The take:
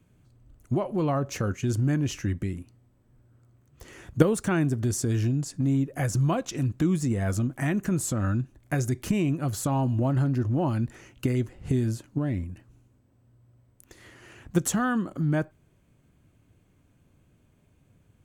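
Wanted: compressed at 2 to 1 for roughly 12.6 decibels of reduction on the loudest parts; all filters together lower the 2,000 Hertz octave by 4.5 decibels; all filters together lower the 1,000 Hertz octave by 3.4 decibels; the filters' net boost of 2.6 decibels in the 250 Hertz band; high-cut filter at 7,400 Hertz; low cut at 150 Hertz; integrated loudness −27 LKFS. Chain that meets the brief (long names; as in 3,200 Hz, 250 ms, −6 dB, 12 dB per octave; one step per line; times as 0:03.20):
high-pass filter 150 Hz
low-pass filter 7,400 Hz
parametric band 250 Hz +4.5 dB
parametric band 1,000 Hz −4 dB
parametric band 2,000 Hz −4.5 dB
downward compressor 2 to 1, threshold −37 dBFS
level +8.5 dB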